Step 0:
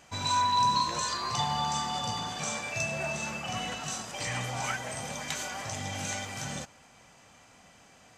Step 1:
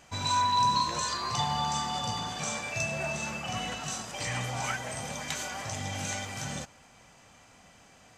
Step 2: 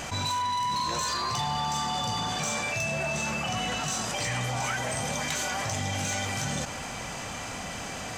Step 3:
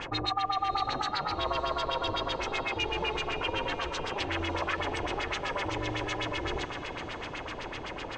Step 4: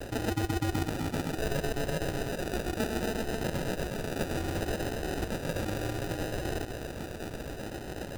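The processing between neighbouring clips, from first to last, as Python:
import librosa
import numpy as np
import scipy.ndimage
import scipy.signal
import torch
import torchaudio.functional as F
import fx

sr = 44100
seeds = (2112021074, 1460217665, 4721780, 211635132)

y1 = fx.low_shelf(x, sr, hz=73.0, db=5.5)
y2 = 10.0 ** (-25.5 / 20.0) * np.tanh(y1 / 10.0 ** (-25.5 / 20.0))
y2 = fx.env_flatten(y2, sr, amount_pct=70)
y3 = fx.filter_lfo_lowpass(y2, sr, shape='sine', hz=7.9, low_hz=390.0, high_hz=3900.0, q=2.3)
y3 = y3 * np.sin(2.0 * np.pi * 210.0 * np.arange(len(y3)) / sr)
y3 = fx.echo_diffused(y3, sr, ms=576, feedback_pct=58, wet_db=-14.5)
y4 = fx.sample_hold(y3, sr, seeds[0], rate_hz=1100.0, jitter_pct=0)
y4 = fx.vibrato(y4, sr, rate_hz=0.66, depth_cents=27.0)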